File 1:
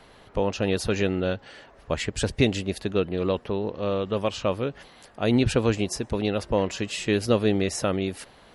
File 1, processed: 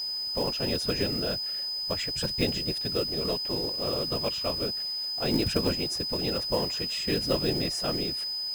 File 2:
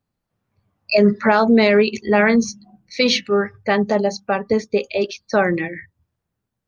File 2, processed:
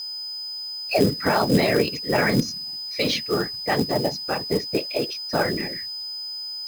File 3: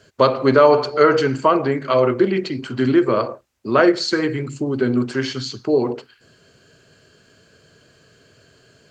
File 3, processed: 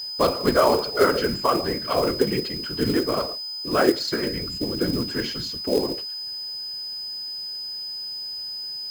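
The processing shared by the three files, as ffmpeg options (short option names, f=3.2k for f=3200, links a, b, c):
-af "afftfilt=real='hypot(re,im)*cos(2*PI*random(0))':imag='hypot(re,im)*sin(2*PI*random(1))':win_size=512:overlap=0.75,aeval=exprs='val(0)+0.0316*sin(2*PI*5000*n/s)':c=same,acrusher=bits=4:mode=log:mix=0:aa=0.000001"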